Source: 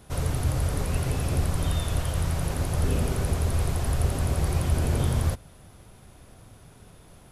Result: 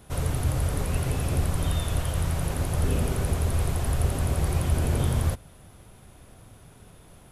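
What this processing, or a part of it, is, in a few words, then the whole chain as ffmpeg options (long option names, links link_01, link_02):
exciter from parts: -filter_complex "[0:a]asplit=2[link_01][link_02];[link_02]highpass=2700,asoftclip=type=tanh:threshold=-28dB,highpass=frequency=3800:width=0.5412,highpass=frequency=3800:width=1.3066,volume=-12dB[link_03];[link_01][link_03]amix=inputs=2:normalize=0"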